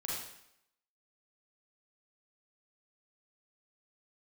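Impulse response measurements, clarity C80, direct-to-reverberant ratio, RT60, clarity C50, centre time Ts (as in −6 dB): 3.0 dB, −5.5 dB, 0.75 s, −1.5 dB, 69 ms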